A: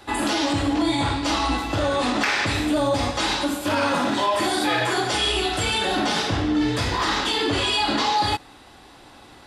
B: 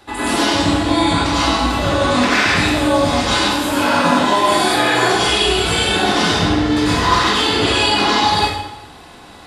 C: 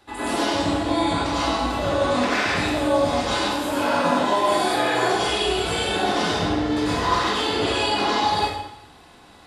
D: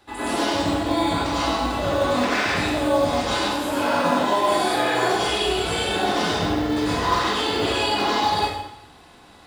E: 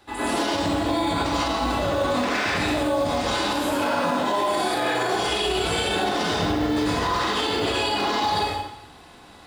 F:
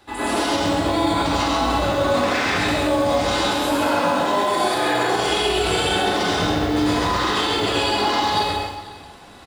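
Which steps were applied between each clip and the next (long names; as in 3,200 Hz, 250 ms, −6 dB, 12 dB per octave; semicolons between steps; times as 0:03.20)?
dense smooth reverb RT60 0.93 s, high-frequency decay 0.85×, pre-delay 80 ms, DRR −8 dB; level −1 dB
dynamic equaliser 580 Hz, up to +6 dB, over −30 dBFS, Q 0.94; level −9 dB
floating-point word with a short mantissa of 4 bits
brickwall limiter −16 dBFS, peak gain reduction 7.5 dB; level +1.5 dB
multi-tap delay 134/495 ms −4/−18.5 dB; level +2 dB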